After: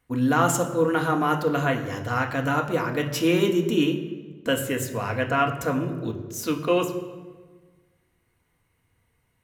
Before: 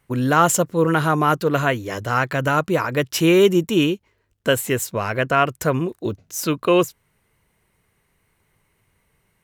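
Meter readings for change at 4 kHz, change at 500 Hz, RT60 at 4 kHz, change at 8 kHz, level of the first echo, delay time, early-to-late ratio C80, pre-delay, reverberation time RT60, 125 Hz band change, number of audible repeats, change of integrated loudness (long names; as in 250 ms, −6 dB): −5.0 dB, −5.5 dB, 1.0 s, −6.5 dB, no echo audible, no echo audible, 11.0 dB, 3 ms, 1.4 s, −4.5 dB, no echo audible, −4.5 dB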